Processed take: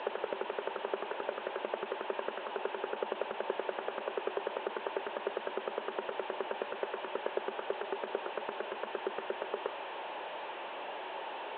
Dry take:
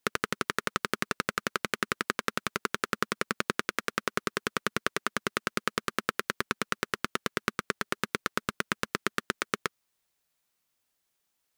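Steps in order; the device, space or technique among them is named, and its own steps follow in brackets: digital answering machine (band-pass 310–3300 Hz; one-bit delta coder 16 kbps, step -35 dBFS; cabinet simulation 370–4200 Hz, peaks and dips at 380 Hz +9 dB, 580 Hz +8 dB, 890 Hz +10 dB, 1.3 kHz -6 dB, 2.1 kHz -8 dB, 4 kHz +4 dB); trim -1.5 dB

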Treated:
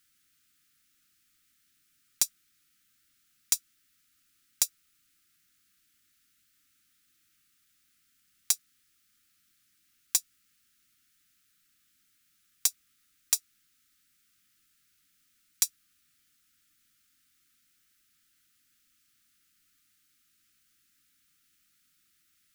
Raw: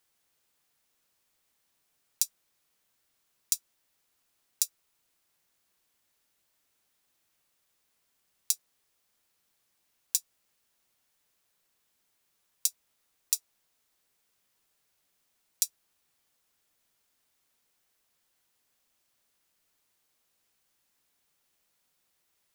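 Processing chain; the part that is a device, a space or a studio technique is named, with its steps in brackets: FFT band-reject 340–1200 Hz; saturation between pre-emphasis and de-emphasis (treble shelf 4.5 kHz +9.5 dB; saturation -6 dBFS, distortion -7 dB; treble shelf 4.5 kHz -9.5 dB); trim +5 dB

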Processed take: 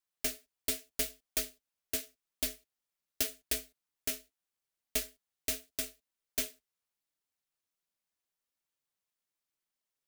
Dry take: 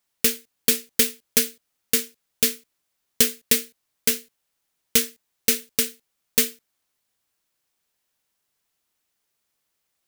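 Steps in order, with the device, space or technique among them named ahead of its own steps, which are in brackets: alien voice (ring modulator 190 Hz; flange 0.82 Hz, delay 3.4 ms, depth 9.8 ms, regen -32%); trim -7 dB

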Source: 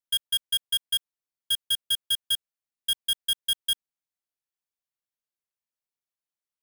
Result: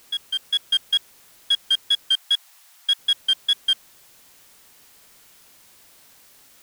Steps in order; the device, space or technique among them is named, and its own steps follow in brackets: dictaphone (band-pass 360–4400 Hz; level rider gain up to 7.5 dB; wow and flutter; white noise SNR 25 dB); 2.09–2.99 s: steep high-pass 680 Hz 36 dB/octave

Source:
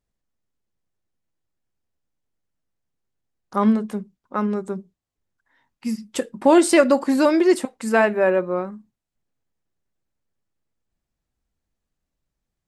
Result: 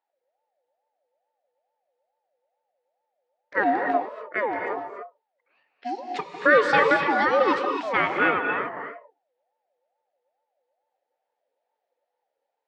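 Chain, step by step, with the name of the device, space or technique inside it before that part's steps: voice changer toy (ring modulator with a swept carrier 690 Hz, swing 30%, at 2.3 Hz; cabinet simulation 400–4700 Hz, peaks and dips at 540 Hz +4 dB, 1.1 kHz -7 dB, 1.8 kHz +6 dB); treble shelf 6 kHz -5 dB; gated-style reverb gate 310 ms rising, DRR 3.5 dB

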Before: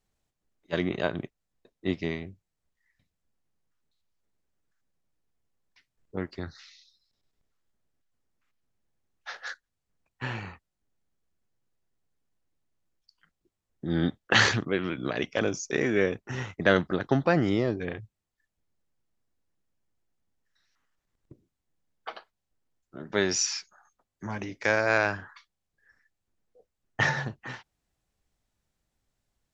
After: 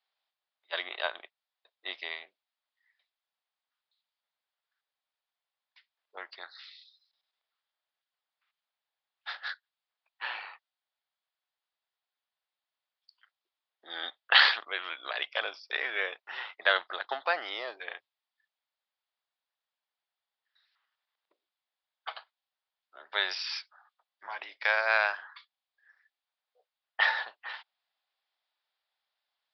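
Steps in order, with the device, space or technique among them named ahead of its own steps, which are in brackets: musical greeting card (resampled via 11.025 kHz; high-pass 710 Hz 24 dB/octave; peaking EQ 3.5 kHz +6 dB 0.42 oct)

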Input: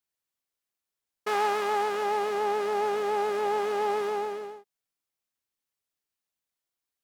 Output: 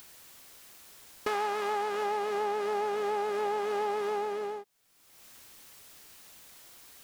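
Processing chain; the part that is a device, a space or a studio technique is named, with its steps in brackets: upward and downward compression (upward compressor, threshold -35 dBFS; compression 3:1, threshold -36 dBFS, peak gain reduction 11 dB); trim +5.5 dB

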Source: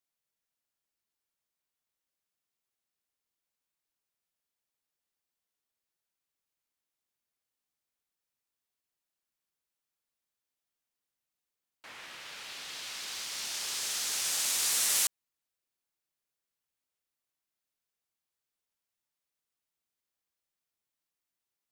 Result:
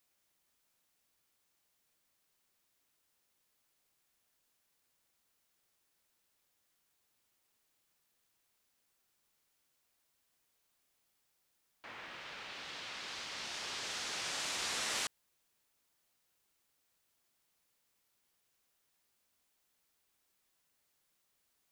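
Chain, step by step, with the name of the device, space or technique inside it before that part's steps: cassette deck with a dirty head (tape spacing loss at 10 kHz 21 dB; wow and flutter; white noise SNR 29 dB); trim +3 dB

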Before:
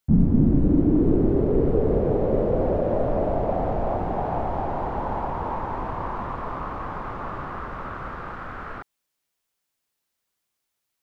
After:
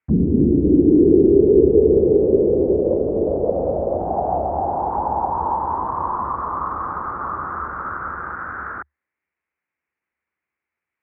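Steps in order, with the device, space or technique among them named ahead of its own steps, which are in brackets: envelope filter bass rig (touch-sensitive low-pass 410–2300 Hz down, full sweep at -18.5 dBFS; cabinet simulation 64–2100 Hz, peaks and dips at 73 Hz +8 dB, 120 Hz -5 dB, 340 Hz +3 dB, 660 Hz -3 dB); trim -1 dB

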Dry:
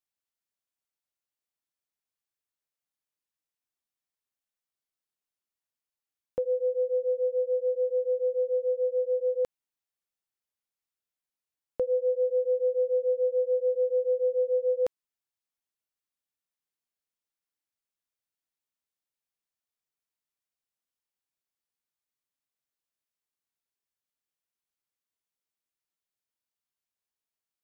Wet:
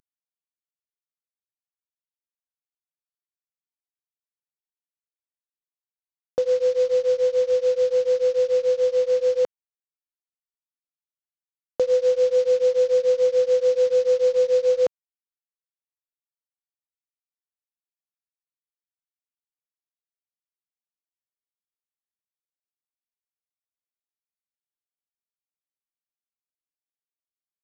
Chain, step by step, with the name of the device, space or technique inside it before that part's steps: early wireless headset (high-pass 160 Hz 6 dB/octave; CVSD coder 32 kbps); trim +7.5 dB

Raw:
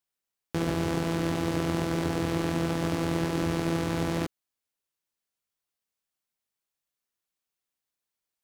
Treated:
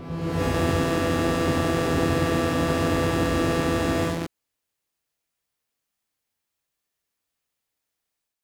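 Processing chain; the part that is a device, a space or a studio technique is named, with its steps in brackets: reverse reverb (reverse; reverberation RT60 1.6 s, pre-delay 103 ms, DRR -5.5 dB; reverse)

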